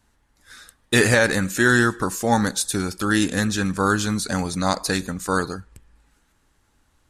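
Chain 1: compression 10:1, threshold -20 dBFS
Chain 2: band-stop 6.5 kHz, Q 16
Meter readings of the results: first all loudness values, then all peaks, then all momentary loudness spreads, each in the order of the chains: -25.5 LUFS, -21.0 LUFS; -9.5 dBFS, -5.0 dBFS; 4 LU, 8 LU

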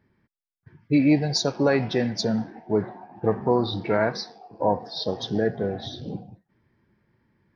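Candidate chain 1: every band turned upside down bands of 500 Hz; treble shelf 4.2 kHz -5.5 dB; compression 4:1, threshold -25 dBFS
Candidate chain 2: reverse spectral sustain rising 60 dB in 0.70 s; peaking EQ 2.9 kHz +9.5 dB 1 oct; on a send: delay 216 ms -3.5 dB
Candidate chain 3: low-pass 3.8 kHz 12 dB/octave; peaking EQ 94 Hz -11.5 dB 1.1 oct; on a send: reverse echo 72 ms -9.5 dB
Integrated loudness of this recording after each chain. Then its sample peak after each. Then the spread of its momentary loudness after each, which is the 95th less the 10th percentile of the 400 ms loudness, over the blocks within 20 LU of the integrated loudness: -31.0 LUFS, -20.0 LUFS, -25.5 LUFS; -14.5 dBFS, -4.0 dBFS, -8.5 dBFS; 8 LU, 13 LU, 15 LU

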